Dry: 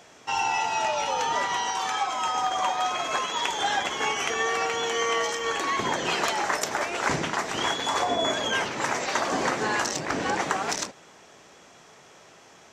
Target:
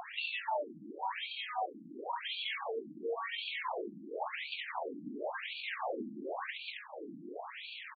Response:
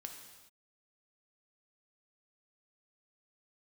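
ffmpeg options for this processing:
-filter_complex "[0:a]aeval=exprs='0.316*(cos(1*acos(clip(val(0)/0.316,-1,1)))-cos(1*PI/2))+0.0631*(cos(6*acos(clip(val(0)/0.316,-1,1)))-cos(6*PI/2))':c=same,bandreject=f=50:t=h:w=6,bandreject=f=100:t=h:w=6,bandreject=f=150:t=h:w=6,bandreject=f=200:t=h:w=6,bandreject=f=250:t=h:w=6,bandreject=f=300:t=h:w=6,bandreject=f=350:t=h:w=6,bandreject=f=400:t=h:w=6,acompressor=threshold=-45dB:ratio=3,asplit=2[a][b];[b]adelay=1130,lowpass=f=2.3k:p=1,volume=-13dB,asplit=2[c][d];[d]adelay=1130,lowpass=f=2.3k:p=1,volume=0.41,asplit=2[e][f];[f]adelay=1130,lowpass=f=2.3k:p=1,volume=0.41,asplit=2[g][h];[h]adelay=1130,lowpass=f=2.3k:p=1,volume=0.41[i];[c][e][g][i]amix=inputs=4:normalize=0[j];[a][j]amix=inputs=2:normalize=0,acrossover=split=4600[k][l];[l]acompressor=threshold=-57dB:ratio=4:attack=1:release=60[m];[k][m]amix=inputs=2:normalize=0,aresample=16000,asoftclip=type=tanh:threshold=-36dB,aresample=44100,atempo=1.6,equalizer=f=1.4k:t=o:w=0.51:g=-10.5,afftfilt=real='re*between(b*sr/1024,230*pow(3300/230,0.5+0.5*sin(2*PI*0.94*pts/sr))/1.41,230*pow(3300/230,0.5+0.5*sin(2*PI*0.94*pts/sr))*1.41)':imag='im*between(b*sr/1024,230*pow(3300/230,0.5+0.5*sin(2*PI*0.94*pts/sr))/1.41,230*pow(3300/230,0.5+0.5*sin(2*PI*0.94*pts/sr))*1.41)':win_size=1024:overlap=0.75,volume=16dB"

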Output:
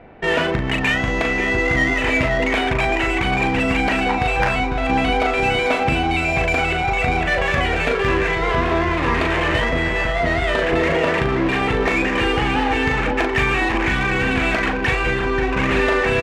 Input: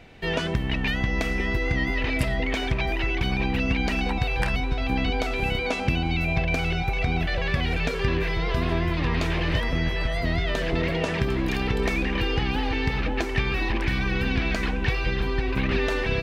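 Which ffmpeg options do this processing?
-filter_complex "[0:a]adynamicsmooth=sensitivity=4:basefreq=1.1k,asplit=2[a][b];[b]highpass=f=720:p=1,volume=14dB,asoftclip=type=tanh:threshold=-10dB[c];[a][c]amix=inputs=2:normalize=0,lowpass=f=2k:p=1,volume=-6dB,asplit=2[d][e];[e]adelay=39,volume=-5dB[f];[d][f]amix=inputs=2:normalize=0,volume=4.5dB"

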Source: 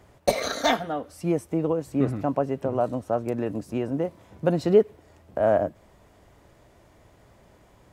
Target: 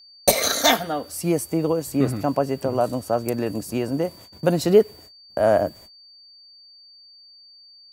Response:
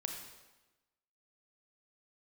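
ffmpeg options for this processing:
-af "aemphasis=mode=production:type=75fm,agate=range=-32dB:threshold=-47dB:ratio=16:detection=peak,aeval=exprs='val(0)+0.00316*sin(2*PI*4600*n/s)':c=same,volume=3.5dB"

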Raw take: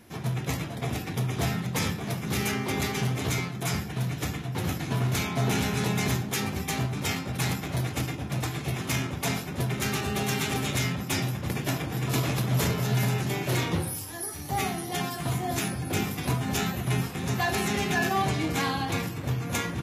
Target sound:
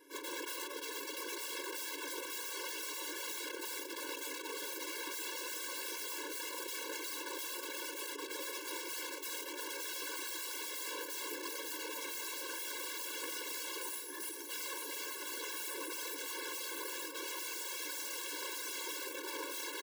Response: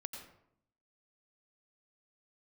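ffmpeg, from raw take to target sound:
-filter_complex "[0:a]asplit=2[a][b];[b]adelay=699.7,volume=-21dB,highshelf=f=4k:g=-15.7[c];[a][c]amix=inputs=2:normalize=0,aeval=exprs='(mod(33.5*val(0)+1,2)-1)/33.5':c=same,afftfilt=real='hypot(re,im)*cos(2*PI*random(0))':imag='hypot(re,im)*sin(2*PI*random(1))':win_size=512:overlap=0.75,afftfilt=real='re*eq(mod(floor(b*sr/1024/290),2),1)':imag='im*eq(mod(floor(b*sr/1024/290),2),1)':win_size=1024:overlap=0.75,volume=3dB"

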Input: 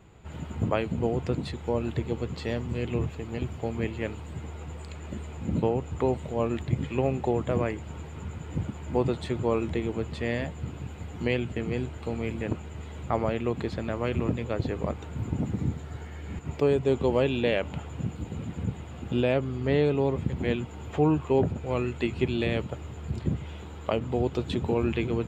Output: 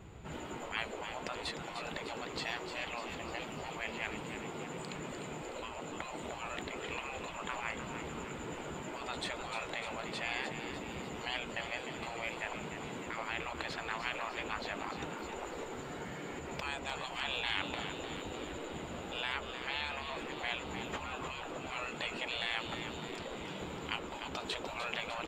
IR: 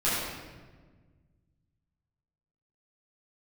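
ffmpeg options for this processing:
-filter_complex "[0:a]afftfilt=real='re*lt(hypot(re,im),0.0631)':imag='im*lt(hypot(re,im),0.0631)':win_size=1024:overlap=0.75,asplit=2[a][b];[b]asplit=8[c][d][e][f][g][h][i][j];[c]adelay=301,afreqshift=85,volume=-8.5dB[k];[d]adelay=602,afreqshift=170,volume=-12.9dB[l];[e]adelay=903,afreqshift=255,volume=-17.4dB[m];[f]adelay=1204,afreqshift=340,volume=-21.8dB[n];[g]adelay=1505,afreqshift=425,volume=-26.2dB[o];[h]adelay=1806,afreqshift=510,volume=-30.7dB[p];[i]adelay=2107,afreqshift=595,volume=-35.1dB[q];[j]adelay=2408,afreqshift=680,volume=-39.6dB[r];[k][l][m][n][o][p][q][r]amix=inputs=8:normalize=0[s];[a][s]amix=inputs=2:normalize=0,volume=2dB"

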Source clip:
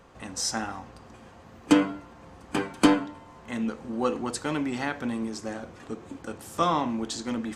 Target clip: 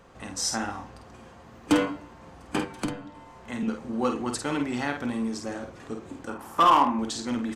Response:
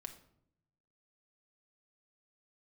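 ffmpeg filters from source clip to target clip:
-filter_complex "[0:a]asettb=1/sr,asplit=3[a][b][c];[a]atrim=end=2.594[d];[b]atrim=start=2.59:end=3.63,asetpts=PTS-STARTPTS,afade=t=in:d=0.004:c=qsin,afade=t=out:st=1.036:d=0.004:c=qsin,acrossover=split=170[e][f];[f]acompressor=threshold=-32dB:ratio=10[g];[e][g]amix=inputs=2:normalize=0[h];[c]atrim=start=3.626[i];[d][h]acrossfade=d=0.004:c1=hsin:c2=qsin[j];[j][i]acrossfade=d=0.004:c1=qsin:c2=hsin,asettb=1/sr,asplit=3[k][l][m];[k]atrim=end=6.294[n];[l]atrim=start=6.29:end=6.99,asetpts=PTS-STARTPTS,afade=t=in:d=0.004:c=qsin,afade=t=out:st=0.696:d=0.004:c=qsin,equalizer=f=125:t=o:w=1:g=-9,equalizer=f=250:t=o:w=1:g=3,equalizer=f=500:t=o:w=1:g=-3,equalizer=f=1k:t=o:w=1:g=11,equalizer=f=4k:t=o:w=1:g=-6,equalizer=f=8k:t=o:w=1:g=-9[o];[m]atrim=start=6.986[p];[n][o]acrossfade=d=0.004:c1=hsin:c2=qsin[q];[q][p]acrossfade=d=0.004:c1=qsin:c2=hsin,asoftclip=type=hard:threshold=-14.5dB,asplit=2[r][s];[s]adelay=49,volume=-6dB[t];[r][t]amix=inputs=2:normalize=0"

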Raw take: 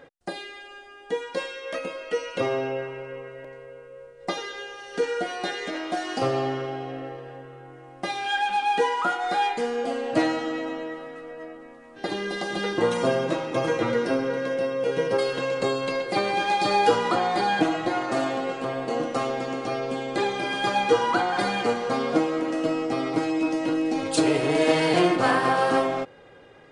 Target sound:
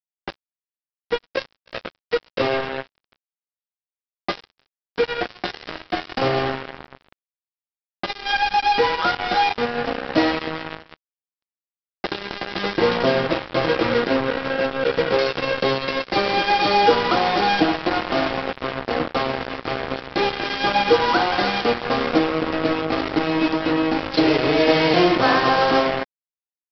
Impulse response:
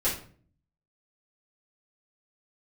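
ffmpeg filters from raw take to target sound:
-af "highpass=f=73:p=1,aresample=11025,acrusher=bits=3:mix=0:aa=0.5,aresample=44100,volume=4dB"

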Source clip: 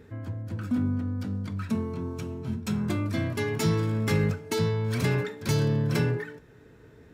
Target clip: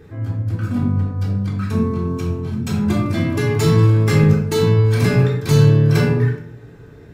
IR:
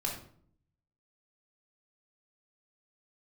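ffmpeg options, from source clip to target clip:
-filter_complex "[1:a]atrim=start_sample=2205[a];[0:a][a]afir=irnorm=-1:irlink=0,volume=5dB"

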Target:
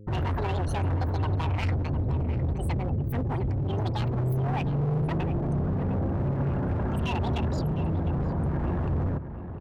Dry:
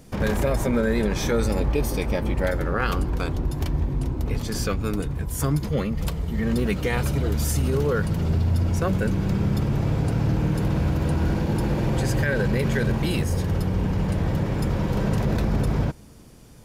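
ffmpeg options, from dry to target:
-filter_complex "[0:a]afftfilt=real='re*gte(hypot(re,im),0.0355)':imag='im*gte(hypot(re,im),0.0355)':win_size=1024:overlap=0.75,afftdn=nr=20:nf=-30,lowshelf=f=100:t=q:w=1.5:g=8,asoftclip=type=tanh:threshold=-17dB,aeval=exprs='val(0)+0.00891*(sin(2*PI*60*n/s)+sin(2*PI*2*60*n/s)/2+sin(2*PI*3*60*n/s)/3+sin(2*PI*4*60*n/s)/4+sin(2*PI*5*60*n/s)/5)':c=same,asoftclip=type=hard:threshold=-21dB,asplit=2[a][b];[b]adelay=1224,volume=-10dB,highshelf=f=4k:g=-27.6[c];[a][c]amix=inputs=2:normalize=0,asetrate=76440,aresample=44100,adynamicequalizer=threshold=0.00501:dfrequency=3700:dqfactor=0.7:tfrequency=3700:tqfactor=0.7:attack=5:release=100:ratio=0.375:range=1.5:mode=cutabove:tftype=highshelf,volume=-4dB"

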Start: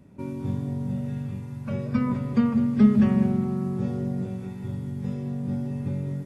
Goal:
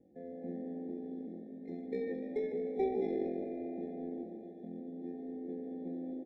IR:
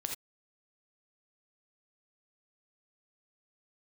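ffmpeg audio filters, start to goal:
-filter_complex "[0:a]asetrate=80880,aresample=44100,atempo=0.545254,lowshelf=f=360:g=10.5,aecho=1:1:3.8:0.43,acrossover=split=150|850[a][b][c];[a]acompressor=mode=upward:threshold=-39dB:ratio=2.5[d];[d][b][c]amix=inputs=3:normalize=0,aderivative,adynamicsmooth=sensitivity=1.5:basefreq=570,asplit=8[e][f][g][h][i][j][k][l];[f]adelay=148,afreqshift=54,volume=-13.5dB[m];[g]adelay=296,afreqshift=108,volume=-17.8dB[n];[h]adelay=444,afreqshift=162,volume=-22.1dB[o];[i]adelay=592,afreqshift=216,volume=-26.4dB[p];[j]adelay=740,afreqshift=270,volume=-30.7dB[q];[k]adelay=888,afreqshift=324,volume=-35dB[r];[l]adelay=1036,afreqshift=378,volume=-39.3dB[s];[e][m][n][o][p][q][r][s]amix=inputs=8:normalize=0,afftfilt=real='re*eq(mod(floor(b*sr/1024/840),2),0)':imag='im*eq(mod(floor(b*sr/1024/840),2),0)':win_size=1024:overlap=0.75,volume=9dB"

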